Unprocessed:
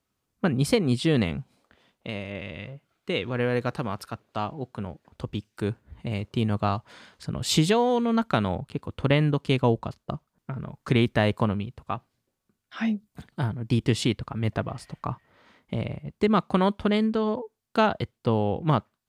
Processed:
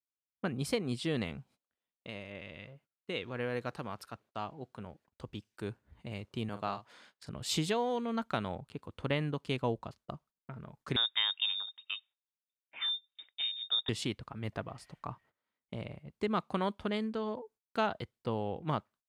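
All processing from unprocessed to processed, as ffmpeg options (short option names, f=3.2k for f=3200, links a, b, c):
-filter_complex "[0:a]asettb=1/sr,asplit=3[a][b][c];[a]atrim=end=6.494[d];[b]atrim=start=6.49:end=7.29,asetpts=PTS-STARTPTS,afade=t=in:d=0.004:c=qsin,afade=t=out:st=0.796:d=0.004:c=qsin,highpass=f=220:p=1,asplit=2[e][f];[f]adelay=45,volume=-9.5dB[g];[e][g]amix=inputs=2:normalize=0,atrim=end_sample=35280[h];[c]atrim=start=7.286[i];[d][h]acrossfade=d=0.004:c1=hsin:c2=qsin[j];[j][i]acrossfade=d=0.004:c1=qsin:c2=hsin,asettb=1/sr,asplit=3[k][l][m];[k]atrim=end=10.964[n];[l]atrim=start=10.96:end=13.89,asetpts=PTS-STARTPTS,afade=t=in:d=0.004:c=qsin,afade=t=out:st=2.926:d=0.004:c=qsin,equalizer=f=460:w=6.1:g=-13.5,lowpass=f=3.2k:t=q:w=0.5098,lowpass=f=3.2k:t=q:w=0.6013,lowpass=f=3.2k:t=q:w=0.9,lowpass=f=3.2k:t=q:w=2.563,afreqshift=-3800[o];[m]atrim=start=13.886[p];[n][o]acrossfade=d=0.004:c1=hsin:c2=qsin[q];[q][p]acrossfade=d=0.004:c1=qsin:c2=hsin,agate=range=-23dB:threshold=-50dB:ratio=16:detection=peak,lowshelf=f=330:g=-5,volume=-8.5dB"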